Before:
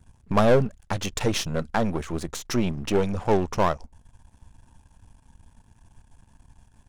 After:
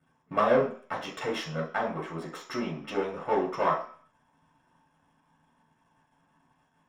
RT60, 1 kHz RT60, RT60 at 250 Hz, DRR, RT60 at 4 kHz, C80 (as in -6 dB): 0.50 s, 0.55 s, 0.40 s, -5.0 dB, 0.55 s, 12.0 dB